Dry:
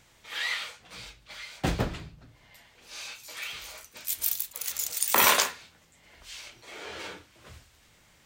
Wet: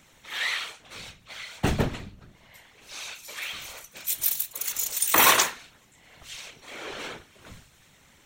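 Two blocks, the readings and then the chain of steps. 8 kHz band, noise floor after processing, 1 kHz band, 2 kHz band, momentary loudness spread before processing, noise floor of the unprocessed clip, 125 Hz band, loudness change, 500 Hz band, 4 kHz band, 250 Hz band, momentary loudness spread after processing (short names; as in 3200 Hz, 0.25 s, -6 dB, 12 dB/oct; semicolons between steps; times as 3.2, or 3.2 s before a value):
+3.0 dB, -58 dBFS, +3.0 dB, +3.0 dB, 23 LU, -61 dBFS, +3.5 dB, +3.0 dB, +2.5 dB, +2.5 dB, +4.0 dB, 23 LU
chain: notch 4800 Hz, Q 8.4; whisperiser; gain +3 dB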